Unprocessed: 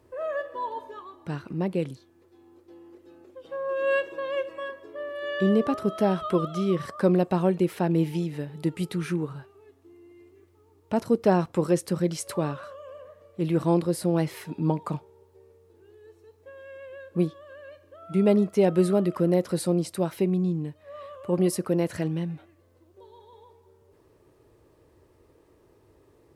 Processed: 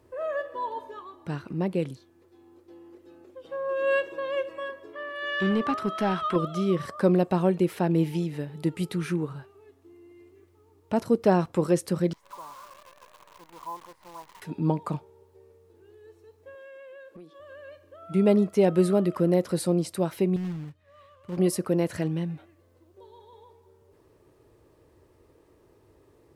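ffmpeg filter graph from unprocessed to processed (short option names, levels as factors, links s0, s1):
-filter_complex "[0:a]asettb=1/sr,asplit=3[s0][s1][s2];[s0]atrim=end=4.934[s3];[s1]atrim=start=4.93:end=6.36,asetpts=PTS-STARTPTS,afade=t=in:d=0.004:c=qsin,afade=t=out:st=1.426:d=0.004:c=qsin,equalizer=f=530:w=1.6:g=-10.5,asplit=2[s4][s5];[s5]highpass=f=720:p=1,volume=4.47,asoftclip=type=tanh:threshold=0.188[s6];[s4][s6]amix=inputs=2:normalize=0,lowpass=f=2700:p=1,volume=0.501[s7];[s2]atrim=start=6.356[s8];[s3][s7]acrossfade=d=0.004:c1=hsin:c2=qsin[s9];[s9][s8]acrossfade=d=0.004:c1=qsin:c2=hsin,asettb=1/sr,asplit=3[s10][s11][s12];[s10]atrim=end=12.134[s13];[s11]atrim=start=12.13:end=14.42,asetpts=PTS-STARTPTS,afade=t=in:d=0.004:c=qsin,afade=t=out:st=2.286:d=0.004:c=qsin,aeval=exprs='val(0)+0.5*0.0282*sgn(val(0))':c=same,bandpass=f=1000:t=q:w=11,acrusher=bits=9:dc=4:mix=0:aa=0.000001[s14];[s12]atrim=start=14.416[s15];[s13][s14]acrossfade=d=0.004:c1=hsin:c2=qsin[s16];[s16][s15]acrossfade=d=0.004:c1=qsin:c2=hsin,asettb=1/sr,asplit=3[s17][s18][s19];[s17]atrim=end=16.554[s20];[s18]atrim=start=16.55:end=17.4,asetpts=PTS-STARTPTS,afade=t=in:d=0.004:c=qsin,afade=t=out:st=0.846:d=0.004:c=qsin,highpass=280,acompressor=threshold=0.00708:ratio=8:attack=3.2:release=140:knee=1:detection=peak,asoftclip=type=hard:threshold=0.0112[s21];[s19]atrim=start=17.396[s22];[s20][s21]acrossfade=d=0.004:c1=hsin:c2=qsin[s23];[s23][s22]acrossfade=d=0.004:c1=qsin:c2=hsin,asettb=1/sr,asplit=3[s24][s25][s26];[s24]atrim=end=20.364[s27];[s25]atrim=start=20.36:end=21.37,asetpts=PTS-STARTPTS,afade=t=in:d=0.004:c=qsin,afade=t=out:st=1.006:d=0.004:c=qsin,equalizer=f=560:w=0.47:g=-15,acrusher=bits=3:mode=log:mix=0:aa=0.000001,lowpass=f=2000:p=1[s28];[s26]atrim=start=21.366[s29];[s27][s28]acrossfade=d=0.004:c1=hsin:c2=qsin[s30];[s30][s29]acrossfade=d=0.004:c1=qsin:c2=hsin"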